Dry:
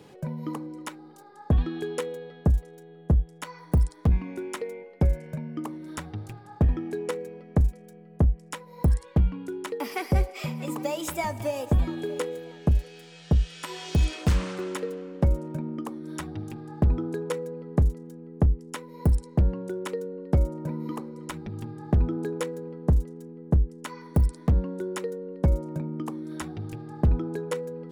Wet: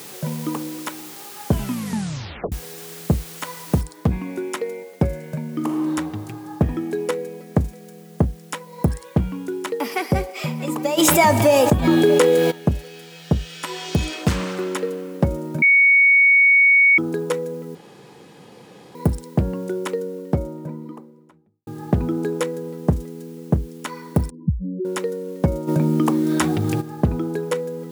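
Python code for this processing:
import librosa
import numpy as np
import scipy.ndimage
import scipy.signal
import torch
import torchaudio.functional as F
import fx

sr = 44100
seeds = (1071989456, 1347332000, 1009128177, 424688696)

y = fx.noise_floor_step(x, sr, seeds[0], at_s=3.81, before_db=-46, after_db=-62, tilt_db=0.0)
y = fx.reverb_throw(y, sr, start_s=5.46, length_s=0.42, rt60_s=2.5, drr_db=0.0)
y = fx.env_flatten(y, sr, amount_pct=70, at=(10.97, 12.5), fade=0.02)
y = fx.studio_fade_out(y, sr, start_s=19.74, length_s=1.93)
y = fx.spec_expand(y, sr, power=3.5, at=(24.3, 24.85))
y = fx.env_flatten(y, sr, amount_pct=50, at=(25.67, 26.8), fade=0.02)
y = fx.edit(y, sr, fx.tape_stop(start_s=1.45, length_s=1.07),
    fx.bleep(start_s=15.62, length_s=1.36, hz=2230.0, db=-17.0),
    fx.room_tone_fill(start_s=17.75, length_s=1.2), tone=tone)
y = scipy.signal.sosfilt(scipy.signal.butter(2, 120.0, 'highpass', fs=sr, output='sos'), y)
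y = F.gain(torch.from_numpy(y), 7.0).numpy()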